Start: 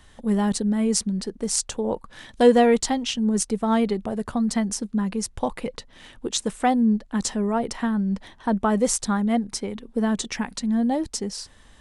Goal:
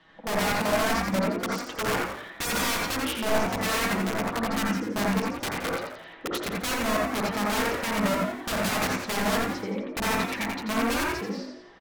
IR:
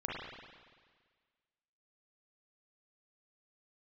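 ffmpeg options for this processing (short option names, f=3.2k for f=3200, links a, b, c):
-filter_complex "[0:a]lowpass=6k,acrossover=split=150 4300:gain=0.0891 1 0.0794[a][b][c];[a][b][c]amix=inputs=3:normalize=0,bandreject=f=50:t=h:w=6,bandreject=f=100:t=h:w=6,bandreject=f=150:t=h:w=6,bandreject=f=200:t=h:w=6,bandreject=f=250:t=h:w=6,bandreject=f=300:t=h:w=6,bandreject=f=350:t=h:w=6,aecho=1:1:6.2:0.76,acontrast=67,aeval=exprs='(mod(5.62*val(0)+1,2)-1)/5.62':c=same,asplit=6[d][e][f][g][h][i];[e]adelay=86,afreqshift=52,volume=-6.5dB[j];[f]adelay=172,afreqshift=104,volume=-13.2dB[k];[g]adelay=258,afreqshift=156,volume=-20dB[l];[h]adelay=344,afreqshift=208,volume=-26.7dB[m];[i]adelay=430,afreqshift=260,volume=-33.5dB[n];[d][j][k][l][m][n]amix=inputs=6:normalize=0[o];[1:a]atrim=start_sample=2205,atrim=end_sample=3528,asetrate=31752,aresample=44100[p];[o][p]afir=irnorm=-1:irlink=0,volume=-9dB"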